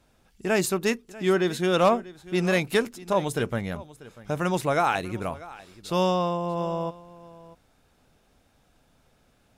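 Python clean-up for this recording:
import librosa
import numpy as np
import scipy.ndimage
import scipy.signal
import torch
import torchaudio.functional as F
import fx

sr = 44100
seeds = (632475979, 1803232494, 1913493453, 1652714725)

y = fx.fix_declip(x, sr, threshold_db=-11.5)
y = fx.fix_echo_inverse(y, sr, delay_ms=641, level_db=-19.0)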